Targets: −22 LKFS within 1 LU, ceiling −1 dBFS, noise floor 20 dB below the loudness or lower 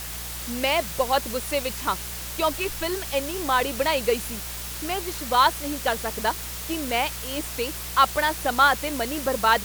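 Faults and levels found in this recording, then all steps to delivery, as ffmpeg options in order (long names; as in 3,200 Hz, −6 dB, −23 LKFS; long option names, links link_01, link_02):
mains hum 60 Hz; hum harmonics up to 180 Hz; level of the hum −38 dBFS; background noise floor −34 dBFS; target noise floor −45 dBFS; integrated loudness −24.5 LKFS; sample peak −5.0 dBFS; target loudness −22.0 LKFS
→ -af "bandreject=frequency=60:width_type=h:width=4,bandreject=frequency=120:width_type=h:width=4,bandreject=frequency=180:width_type=h:width=4"
-af "afftdn=noise_reduction=11:noise_floor=-34"
-af "volume=2.5dB"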